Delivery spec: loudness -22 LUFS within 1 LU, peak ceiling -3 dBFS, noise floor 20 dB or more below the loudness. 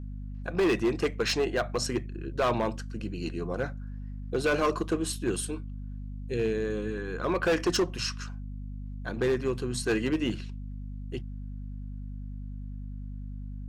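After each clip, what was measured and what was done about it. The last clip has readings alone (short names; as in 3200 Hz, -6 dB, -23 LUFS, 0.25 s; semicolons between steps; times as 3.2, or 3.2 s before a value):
clipped 1.3%; flat tops at -20.5 dBFS; hum 50 Hz; harmonics up to 250 Hz; hum level -36 dBFS; loudness -31.0 LUFS; peak -20.5 dBFS; loudness target -22.0 LUFS
-> clip repair -20.5 dBFS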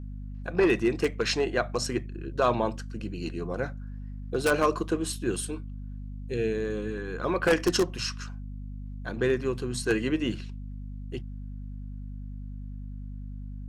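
clipped 0.0%; hum 50 Hz; harmonics up to 250 Hz; hum level -35 dBFS
-> notches 50/100/150/200/250 Hz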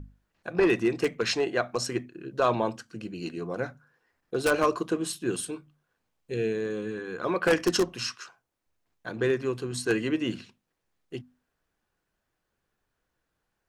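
hum none; loudness -28.5 LUFS; peak -10.5 dBFS; loudness target -22.0 LUFS
-> gain +6.5 dB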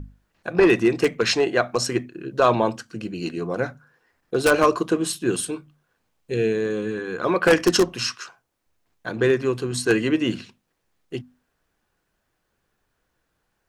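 loudness -22.0 LUFS; peak -4.0 dBFS; noise floor -75 dBFS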